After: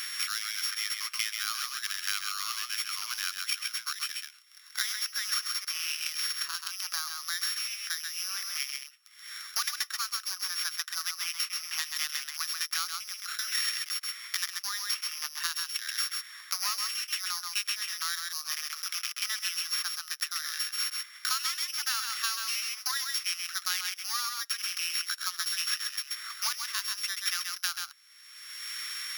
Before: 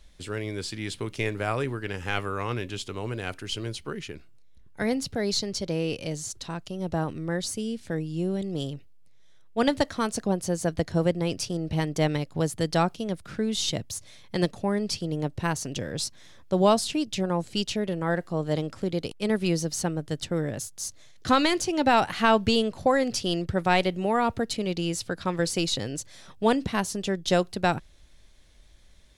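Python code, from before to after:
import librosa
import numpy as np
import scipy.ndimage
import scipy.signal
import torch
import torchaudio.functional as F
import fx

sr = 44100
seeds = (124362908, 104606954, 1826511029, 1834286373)

y = np.r_[np.sort(x[:len(x) // 8 * 8].reshape(-1, 8), axis=1).ravel(), x[len(x) // 8 * 8:]]
y = scipy.signal.sosfilt(scipy.signal.cheby1(5, 1.0, 1200.0, 'highpass', fs=sr, output='sos'), y)
y = y + 10.0 ** (-5.5 / 20.0) * np.pad(y, (int(131 * sr / 1000.0), 0))[:len(y)]
y = fx.band_squash(y, sr, depth_pct=100)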